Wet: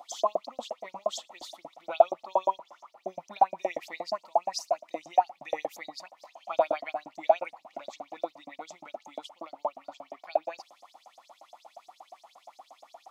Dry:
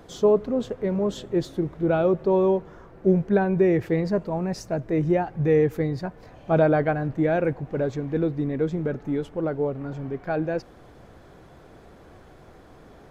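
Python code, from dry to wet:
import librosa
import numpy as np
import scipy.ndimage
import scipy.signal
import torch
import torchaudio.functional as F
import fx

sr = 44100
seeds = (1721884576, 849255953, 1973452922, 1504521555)

y = fx.filter_lfo_highpass(x, sr, shape='saw_up', hz=8.5, low_hz=590.0, high_hz=6900.0, q=6.6)
y = fx.fixed_phaser(y, sr, hz=430.0, stages=6)
y = F.gain(torch.from_numpy(y), -1.5).numpy()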